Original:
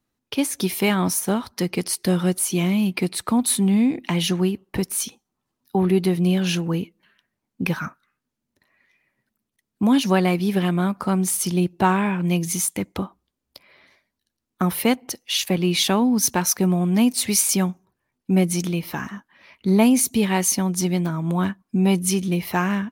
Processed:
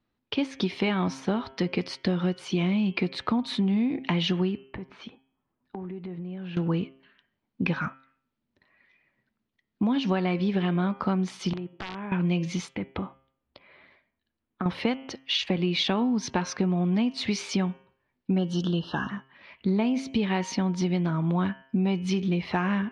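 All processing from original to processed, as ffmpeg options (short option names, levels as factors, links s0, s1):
-filter_complex "[0:a]asettb=1/sr,asplit=3[s0][s1][s2];[s0]atrim=end=4.614[s3];[s1]atrim=start=4.61:end=6.57,asetpts=PTS-STARTPTS,afade=t=in:d=0.004:c=qsin,afade=t=out:st=1.956:d=0.004:c=qsin,lowpass=2000,acompressor=threshold=0.0224:ratio=16:attack=3.2:release=140:knee=1:detection=peak[s4];[s2]atrim=start=6.566[s5];[s3][s4]acrossfade=d=0.004:c1=hsin:c2=qsin[s6];[s6][s5]acrossfade=d=0.004:c1=qsin:c2=hsin,asettb=1/sr,asplit=3[s7][s8][s9];[s7]atrim=end=11.534[s10];[s8]atrim=start=11.53:end=12.12,asetpts=PTS-STARTPTS,afade=t=in:d=0.004:c=qsin,afade=t=out:st=0.586:d=0.004:c=qsin,highpass=170,lowpass=2000,acompressor=threshold=0.0251:ratio=6:attack=3.2:release=140:knee=1:detection=peak,aeval=exprs='(mod(20*val(0)+1,2)-1)/20':c=same[s11];[s9]atrim=start=12.116[s12];[s10][s11]acrossfade=d=0.004:c1=hsin:c2=qsin[s13];[s13][s12]acrossfade=d=0.004:c1=qsin:c2=hsin,asettb=1/sr,asplit=3[s14][s15][s16];[s14]atrim=end=12.754[s17];[s15]atrim=start=12.75:end=14.66,asetpts=PTS-STARTPTS,afade=t=in:d=0.004:c=qsin,afade=t=out:st=1.906:d=0.004:c=qsin,lowpass=3000,acompressor=threshold=0.0447:ratio=4:attack=3.2:release=140:knee=1:detection=peak[s18];[s16]atrim=start=14.656[s19];[s17][s18]acrossfade=d=0.004:c1=hsin:c2=qsin[s20];[s20][s19]acrossfade=d=0.004:c1=qsin:c2=hsin,asettb=1/sr,asplit=3[s21][s22][s23];[s21]atrim=end=18.384[s24];[s22]atrim=start=18.38:end=19.1,asetpts=PTS-STARTPTS,afade=t=in:d=0.004:c=qsin,afade=t=out:st=0.716:d=0.004:c=qsin,asuperstop=centerf=2200:order=12:qfactor=2.1,equalizer=f=2700:w=1.9:g=6[s25];[s23]atrim=start=19.096[s26];[s24][s25]acrossfade=d=0.004:c1=hsin:c2=qsin[s27];[s27][s26]acrossfade=d=0.004:c1=qsin:c2=hsin,lowpass=f=4200:w=0.5412,lowpass=f=4200:w=1.3066,bandreject=f=133.5:t=h:w=4,bandreject=f=267:t=h:w=4,bandreject=f=400.5:t=h:w=4,bandreject=f=534:t=h:w=4,bandreject=f=667.5:t=h:w=4,bandreject=f=801:t=h:w=4,bandreject=f=934.5:t=h:w=4,bandreject=f=1068:t=h:w=4,bandreject=f=1201.5:t=h:w=4,bandreject=f=1335:t=h:w=4,bandreject=f=1468.5:t=h:w=4,bandreject=f=1602:t=h:w=4,bandreject=f=1735.5:t=h:w=4,bandreject=f=1869:t=h:w=4,bandreject=f=2002.5:t=h:w=4,bandreject=f=2136:t=h:w=4,bandreject=f=2269.5:t=h:w=4,bandreject=f=2403:t=h:w=4,bandreject=f=2536.5:t=h:w=4,bandreject=f=2670:t=h:w=4,bandreject=f=2803.5:t=h:w=4,bandreject=f=2937:t=h:w=4,bandreject=f=3070.5:t=h:w=4,bandreject=f=3204:t=h:w=4,bandreject=f=3337.5:t=h:w=4,acompressor=threshold=0.0794:ratio=6"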